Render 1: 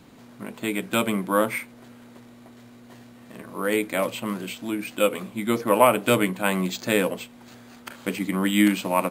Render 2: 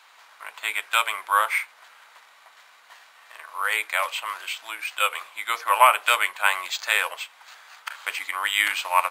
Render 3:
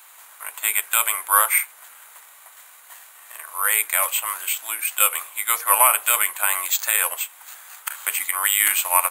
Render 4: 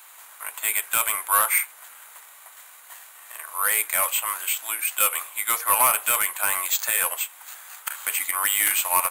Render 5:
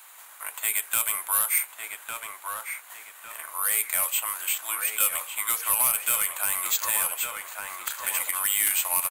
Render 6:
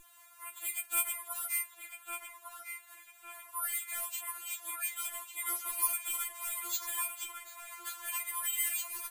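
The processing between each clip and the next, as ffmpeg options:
ffmpeg -i in.wav -af "highpass=frequency=940:width=0.5412,highpass=frequency=940:width=1.3066,highshelf=frequency=6000:gain=-9,volume=7dB" out.wav
ffmpeg -i in.wav -af "aexciter=amount=10.9:drive=2.5:freq=7300,alimiter=level_in=2dB:limit=-1dB:release=50:level=0:latency=1,volume=-1dB" out.wav
ffmpeg -i in.wav -af "asoftclip=type=tanh:threshold=-11.5dB" out.wav
ffmpeg -i in.wav -filter_complex "[0:a]asplit=2[link_01][link_02];[link_02]adelay=1153,lowpass=frequency=4400:poles=1,volume=-7dB,asplit=2[link_03][link_04];[link_04]adelay=1153,lowpass=frequency=4400:poles=1,volume=0.38,asplit=2[link_05][link_06];[link_06]adelay=1153,lowpass=frequency=4400:poles=1,volume=0.38,asplit=2[link_07][link_08];[link_08]adelay=1153,lowpass=frequency=4400:poles=1,volume=0.38[link_09];[link_01][link_03][link_05][link_07][link_09]amix=inputs=5:normalize=0,acrossover=split=210|3000[link_10][link_11][link_12];[link_11]acompressor=threshold=-31dB:ratio=4[link_13];[link_10][link_13][link_12]amix=inputs=3:normalize=0,volume=-1.5dB" out.wav
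ffmpeg -i in.wav -af "aeval=exprs='val(0)+0.00891*(sin(2*PI*50*n/s)+sin(2*PI*2*50*n/s)/2+sin(2*PI*3*50*n/s)/3+sin(2*PI*4*50*n/s)/4+sin(2*PI*5*50*n/s)/5)':channel_layout=same,afftfilt=real='re*4*eq(mod(b,16),0)':imag='im*4*eq(mod(b,16),0)':win_size=2048:overlap=0.75,volume=-8dB" out.wav

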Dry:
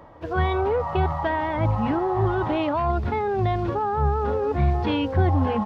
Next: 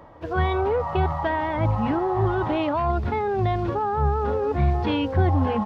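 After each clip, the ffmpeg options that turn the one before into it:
ffmpeg -i in.wav -af anull out.wav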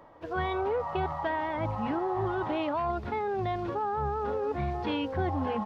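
ffmpeg -i in.wav -af "equalizer=frequency=64:width_type=o:width=2.6:gain=-9,volume=-5.5dB" out.wav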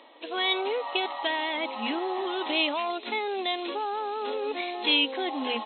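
ffmpeg -i in.wav -af "aexciter=amount=6.3:drive=8.1:freq=2300,afftfilt=real='re*between(b*sr/4096,220,4200)':imag='im*between(b*sr/4096,220,4200)':win_size=4096:overlap=0.75" out.wav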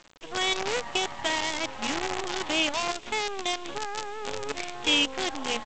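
ffmpeg -i in.wav -af "aresample=8000,aresample=44100,aresample=16000,acrusher=bits=5:dc=4:mix=0:aa=0.000001,aresample=44100" out.wav

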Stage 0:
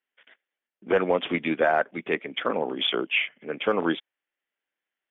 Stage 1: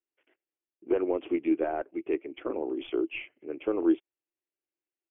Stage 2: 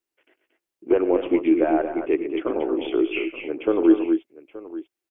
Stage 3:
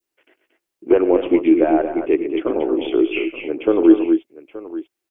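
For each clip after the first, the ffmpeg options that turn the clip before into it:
ffmpeg -i in.wav -af "aeval=exprs='0.299*(cos(1*acos(clip(val(0)/0.299,-1,1)))-cos(1*PI/2))+0.0119*(cos(2*acos(clip(val(0)/0.299,-1,1)))-cos(2*PI/2))':channel_layout=same,firequalizer=gain_entry='entry(110,0);entry(180,-17);entry(330,10);entry(470,-3);entry(1700,-15);entry(2700,-7);entry(3900,-29)':delay=0.05:min_phase=1,volume=-4.5dB" out.wav
ffmpeg -i in.wav -af "aecho=1:1:100|119|229|241|876:0.15|0.126|0.376|0.211|0.141,volume=7.5dB" out.wav
ffmpeg -i in.wav -af "adynamicequalizer=threshold=0.01:dfrequency=1400:dqfactor=0.85:tfrequency=1400:tqfactor=0.85:attack=5:release=100:ratio=0.375:range=2:mode=cutabove:tftype=bell,volume=5dB" out.wav

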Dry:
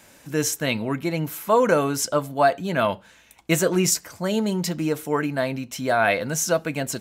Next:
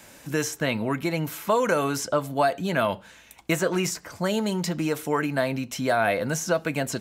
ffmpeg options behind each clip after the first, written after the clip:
ffmpeg -i in.wav -filter_complex "[0:a]acrossover=split=680|1900|6700[link_01][link_02][link_03][link_04];[link_01]acompressor=threshold=-27dB:ratio=4[link_05];[link_02]acompressor=threshold=-28dB:ratio=4[link_06];[link_03]acompressor=threshold=-37dB:ratio=4[link_07];[link_04]acompressor=threshold=-42dB:ratio=4[link_08];[link_05][link_06][link_07][link_08]amix=inputs=4:normalize=0,volume=2.5dB" out.wav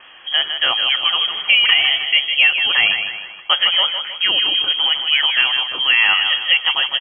ffmpeg -i in.wav -af "aecho=1:1:156|312|468|624|780:0.422|0.186|0.0816|0.0359|0.0158,lowpass=frequency=2900:width_type=q:width=0.5098,lowpass=frequency=2900:width_type=q:width=0.6013,lowpass=frequency=2900:width_type=q:width=0.9,lowpass=frequency=2900:width_type=q:width=2.563,afreqshift=-3400,volume=8dB" out.wav

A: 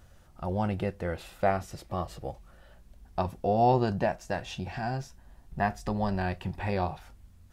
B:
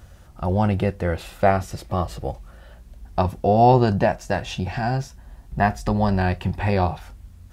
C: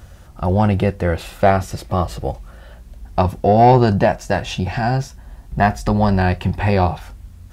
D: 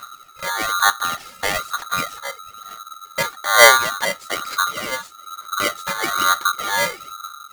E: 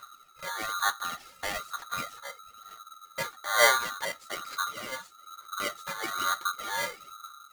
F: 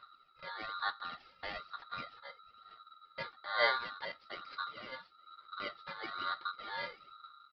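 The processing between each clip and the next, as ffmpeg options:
ffmpeg -i in.wav -af "highpass=40,lowshelf=frequency=74:gain=8,volume=8dB" out.wav
ffmpeg -i in.wav -af "asoftclip=type=tanh:threshold=-6.5dB,volume=5dB" out.wav
ffmpeg -i in.wav -af "aphaser=in_gain=1:out_gain=1:delay=2.7:decay=0.74:speed=1.1:type=sinusoidal,aeval=exprs='val(0)*sgn(sin(2*PI*1300*n/s))':channel_layout=same,volume=-9dB" out.wav
ffmpeg -i in.wav -af "flanger=delay=1.9:depth=7.6:regen=-47:speed=0.74:shape=triangular,volume=-7.5dB" out.wav
ffmpeg -i in.wav -af "aresample=11025,aresample=44100,volume=-8.5dB" out.wav

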